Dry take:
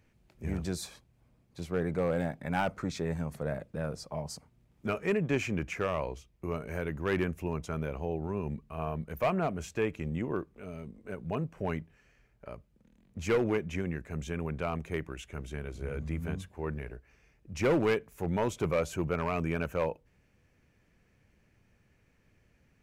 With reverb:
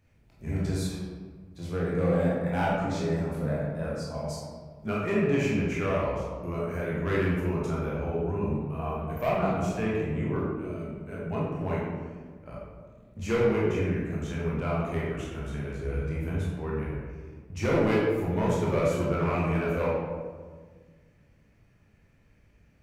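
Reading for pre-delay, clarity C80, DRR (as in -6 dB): 16 ms, 1.5 dB, -6.0 dB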